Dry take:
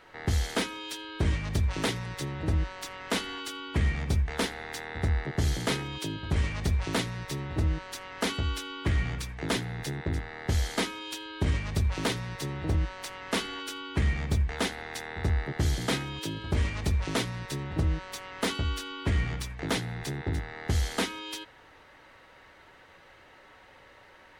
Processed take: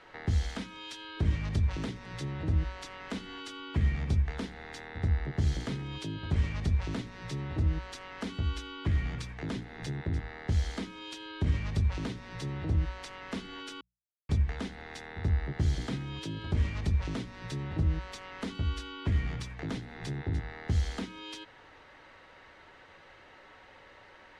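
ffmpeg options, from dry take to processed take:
-filter_complex "[0:a]asettb=1/sr,asplit=3[a][b][c];[a]atrim=end=0.464[d];[b]atrim=start=0.46:end=1.17,asetpts=PTS-STARTPTS,afade=t=in:d=0.004:c=qsin,afade=t=out:st=0.706:d=0.004:c=qsin,equalizer=f=380:t=o:w=0.77:g=-7[e];[c]atrim=start=1.166[f];[d][e]acrossfade=d=0.004:c1=hsin:c2=qsin[g];[g][f]acrossfade=d=0.004:c1=qsin:c2=hsin,asplit=3[h][i][j];[h]atrim=end=13.81,asetpts=PTS-STARTPTS,afade=t=out:st=13.806:d=0.004:c=hsin[k];[i]atrim=start=13.81:end=14.29,asetpts=PTS-STARTPTS,volume=0[l];[j]atrim=start=14.29,asetpts=PTS-STARTPTS,afade=t=in:d=0.004:c=hsin[m];[k][l][m]concat=n=3:v=0:a=1,lowpass=6.7k,bandreject=f=60:t=h:w=6,bandreject=f=120:t=h:w=6,bandreject=f=180:t=h:w=6,acrossover=split=260[n][o];[o]acompressor=threshold=-40dB:ratio=10[p];[n][p]amix=inputs=2:normalize=0"

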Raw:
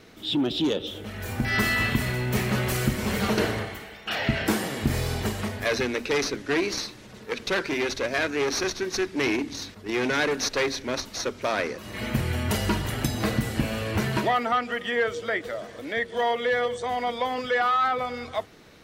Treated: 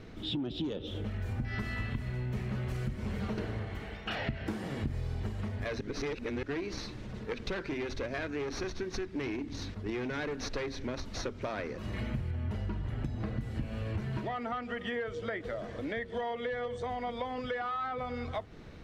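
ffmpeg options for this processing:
-filter_complex "[0:a]asettb=1/sr,asplit=3[a][b][c];[a]atrim=end=12.314[d];[b]atrim=start=12.31:end=13.39,asetpts=PTS-STARTPTS,afade=t=in:d=0.004:c=qsin,afade=t=out:st=1.076:d=0.004:c=qsin,highshelf=f=4.2k:g=-10.5[e];[c]atrim=start=13.386[f];[d][e]acrossfade=d=0.004:c1=hsin:c2=qsin[g];[g][f]acrossfade=d=0.004:c1=qsin:c2=hsin,asplit=3[h][i][j];[h]atrim=end=5.812[k];[i]atrim=start=5.808:end=6.432,asetpts=PTS-STARTPTS,areverse[l];[j]atrim=start=6.428[m];[k][l]acrossfade=d=0.004:c1=hsin:c2=hsin[n];[n][m]acrossfade=d=0.004:c1=hsin:c2=hsin,aemphasis=mode=reproduction:type=bsi,acompressor=threshold=-31dB:ratio=6,volume=-2dB"

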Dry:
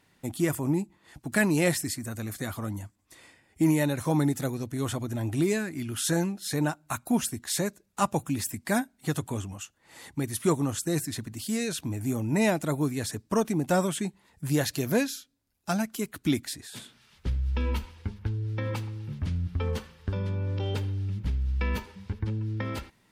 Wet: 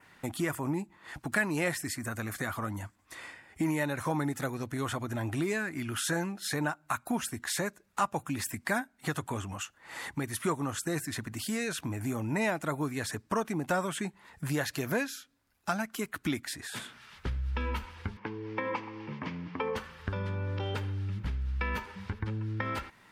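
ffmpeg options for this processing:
-filter_complex "[0:a]asettb=1/sr,asplit=3[a][b][c];[a]atrim=end=18.174[d];[b]atrim=start=18.17:end=19.76,asetpts=PTS-STARTPTS,afade=t=in:d=0.004:c=qsin,afade=t=out:st=1.586:d=0.004:c=qsin,highpass=f=170:w=0.5412,highpass=f=170:w=1.3066,equalizer=f=290:t=q:w=4:g=4,equalizer=f=460:t=q:w=4:g=5,equalizer=f=1k:t=q:w=4:g=9,equalizer=f=1.4k:t=q:w=4:g=-7,equalizer=f=2.2k:t=q:w=4:g=4,equalizer=f=3.9k:t=q:w=4:g=-7,lowpass=f=5.3k:w=0.5412,lowpass=f=5.3k:w=1.3066[e];[c]atrim=start=19.756[f];[d][e]acrossfade=d=0.004:c1=hsin:c2=qsin[g];[g][f]acrossfade=d=0.004:c1=qsin:c2=hsin,equalizer=f=1.4k:w=0.62:g=10.5,acompressor=threshold=-37dB:ratio=2,adynamicequalizer=threshold=0.002:dfrequency=4000:dqfactor=2.2:tfrequency=4000:tqfactor=2.2:attack=5:release=100:ratio=0.375:range=2:mode=cutabove:tftype=bell,volume=1.5dB"

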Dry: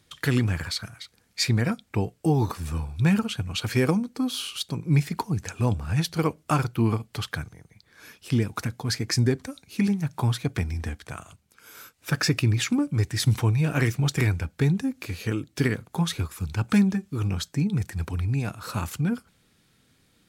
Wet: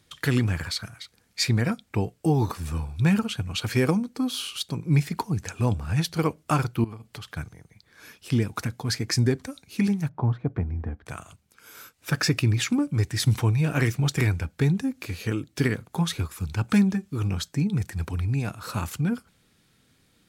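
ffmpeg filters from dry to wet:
-filter_complex "[0:a]asettb=1/sr,asplit=3[a][b][c];[a]atrim=end=6.844[d];[b]atrim=start=6.84:end=7.37,asetpts=PTS-STARTPTS,afade=t=in:d=0.004:c=qsin,afade=t=out:st=0.526:d=0.004:c=qsin,acompressor=threshold=-36dB:ratio=5:attack=3.2:release=140:knee=1:detection=peak[e];[c]atrim=start=7.366[f];[d][e]acrossfade=d=0.004:c1=hsin:c2=qsin[g];[g][f]acrossfade=d=0.004:c1=qsin:c2=hsin,asettb=1/sr,asplit=3[h][i][j];[h]atrim=end=10.094[k];[i]atrim=start=10.09:end=11.06,asetpts=PTS-STARTPTS,afade=t=in:d=0.004:c=qsin,afade=t=out:st=0.966:d=0.004:c=qsin,lowpass=1k[l];[j]atrim=start=11.056[m];[k][l]acrossfade=d=0.004:c1=hsin:c2=qsin[n];[n][m]acrossfade=d=0.004:c1=qsin:c2=hsin"

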